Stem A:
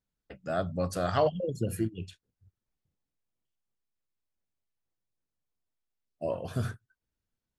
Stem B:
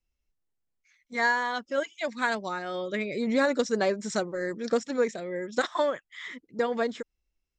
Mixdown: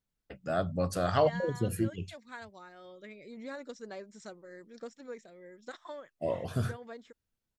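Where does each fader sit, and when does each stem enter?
0.0, −18.0 decibels; 0.00, 0.10 seconds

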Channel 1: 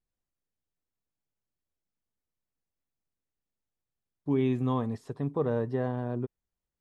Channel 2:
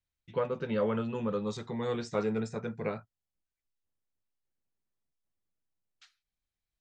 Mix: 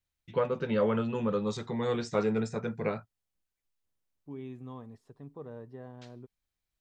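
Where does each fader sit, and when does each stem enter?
−15.5, +2.5 decibels; 0.00, 0.00 seconds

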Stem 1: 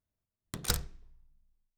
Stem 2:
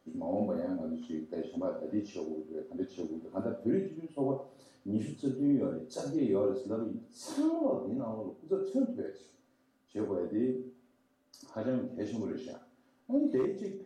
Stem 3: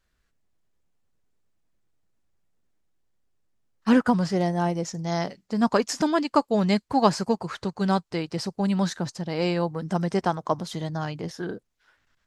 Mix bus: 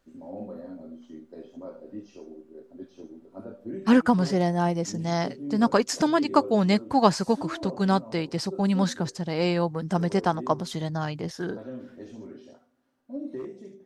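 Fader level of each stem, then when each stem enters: muted, −6.0 dB, +0.5 dB; muted, 0.00 s, 0.00 s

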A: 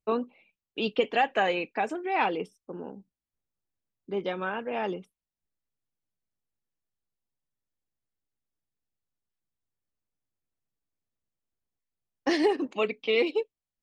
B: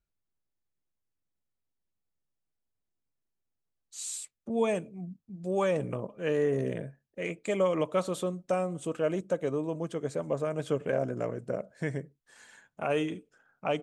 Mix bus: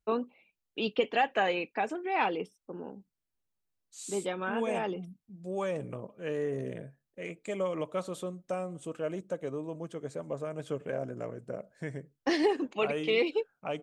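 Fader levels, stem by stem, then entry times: −2.5, −5.5 decibels; 0.00, 0.00 seconds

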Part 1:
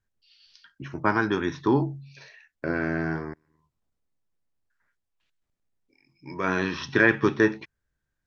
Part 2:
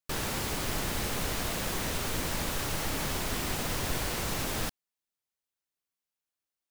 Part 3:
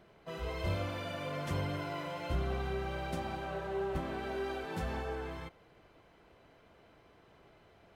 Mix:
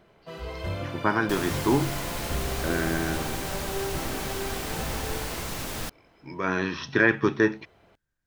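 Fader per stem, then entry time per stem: −1.0, −1.0, +2.5 decibels; 0.00, 1.20, 0.00 seconds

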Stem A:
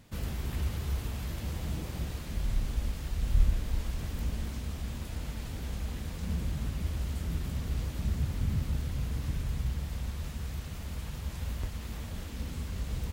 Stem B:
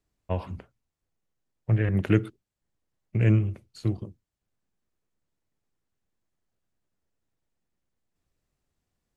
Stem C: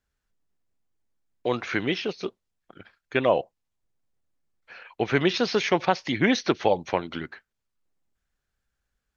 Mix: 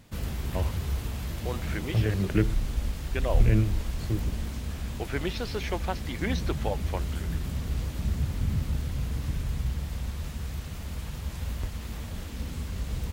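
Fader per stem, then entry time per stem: +2.5, −3.0, −10.0 decibels; 0.00, 0.25, 0.00 seconds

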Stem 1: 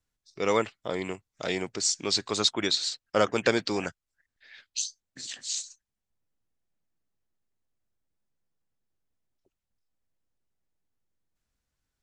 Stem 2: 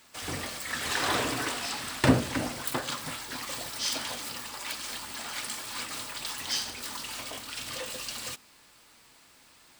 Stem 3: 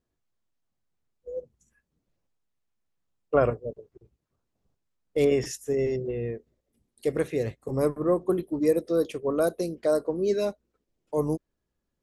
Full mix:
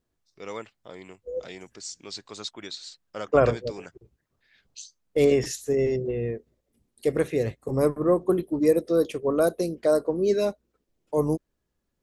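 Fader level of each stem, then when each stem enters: −11.5 dB, muted, +2.5 dB; 0.00 s, muted, 0.00 s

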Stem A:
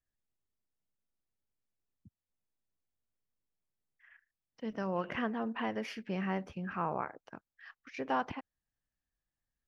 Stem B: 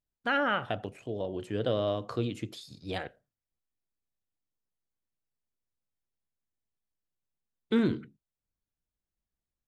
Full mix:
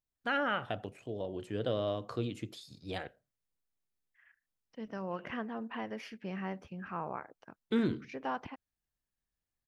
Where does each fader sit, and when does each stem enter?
−4.0, −4.0 decibels; 0.15, 0.00 seconds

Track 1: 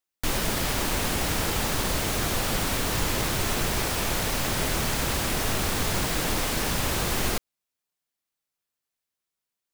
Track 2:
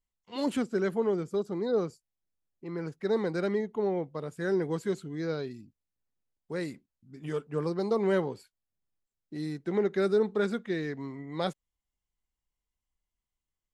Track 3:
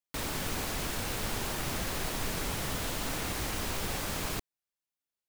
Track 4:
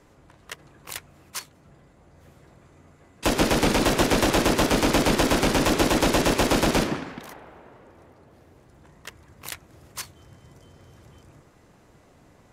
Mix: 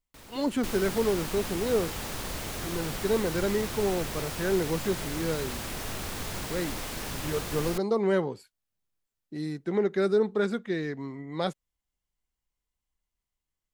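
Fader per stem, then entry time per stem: −9.0 dB, +1.5 dB, −15.5 dB, muted; 0.40 s, 0.00 s, 0.00 s, muted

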